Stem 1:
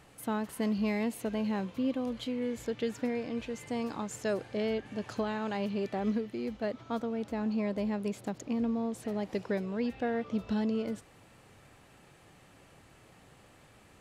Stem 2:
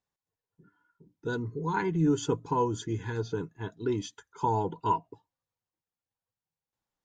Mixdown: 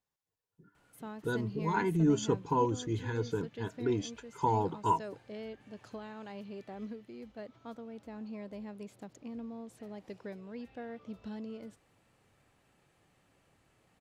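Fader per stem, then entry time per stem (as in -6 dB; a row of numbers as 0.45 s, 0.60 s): -11.5 dB, -1.5 dB; 0.75 s, 0.00 s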